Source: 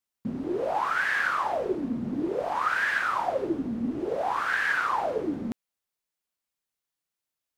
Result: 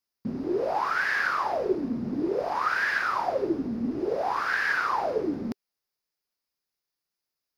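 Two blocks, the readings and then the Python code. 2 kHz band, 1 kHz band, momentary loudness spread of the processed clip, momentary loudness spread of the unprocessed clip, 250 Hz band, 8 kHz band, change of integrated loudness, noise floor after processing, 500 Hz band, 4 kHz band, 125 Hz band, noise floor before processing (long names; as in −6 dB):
0.0 dB, 0.0 dB, 6 LU, 7 LU, +0.5 dB, −1.0 dB, +0.5 dB, below −85 dBFS, +1.5 dB, +0.5 dB, 0.0 dB, below −85 dBFS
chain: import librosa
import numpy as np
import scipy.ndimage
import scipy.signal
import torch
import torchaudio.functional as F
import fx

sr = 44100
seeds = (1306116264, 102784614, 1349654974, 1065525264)

y = fx.graphic_eq_31(x, sr, hz=(400, 3150, 5000, 8000), db=(4, -4, 9, -10))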